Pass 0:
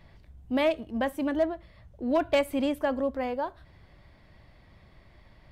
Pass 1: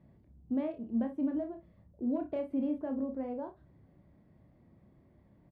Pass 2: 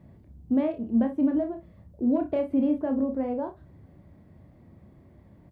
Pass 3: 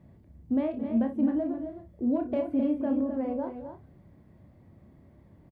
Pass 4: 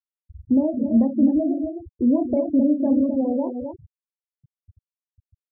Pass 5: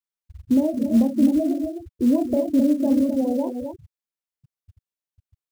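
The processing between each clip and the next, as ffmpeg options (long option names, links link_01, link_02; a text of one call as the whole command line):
ffmpeg -i in.wav -af "acompressor=threshold=-29dB:ratio=2,bandpass=frequency=230:width_type=q:width=1.2:csg=0,aecho=1:1:30|57:0.501|0.237" out.wav
ffmpeg -i in.wav -af "equalizer=frequency=85:width_type=o:width=0.24:gain=9.5,volume=8.5dB" out.wav
ffmpeg -i in.wav -af "aecho=1:1:218|262:0.158|0.376,volume=-3dB" out.wav
ffmpeg -i in.wav -filter_complex "[0:a]afftfilt=real='re*gte(hypot(re,im),0.0282)':imag='im*gte(hypot(re,im),0.0282)':win_size=1024:overlap=0.75,equalizer=frequency=2400:width=0.4:gain=-12,asplit=2[link_01][link_02];[link_02]acompressor=threshold=-37dB:ratio=6,volume=-0.5dB[link_03];[link_01][link_03]amix=inputs=2:normalize=0,volume=7.5dB" out.wav
ffmpeg -i in.wav -af "acrusher=bits=7:mode=log:mix=0:aa=0.000001" out.wav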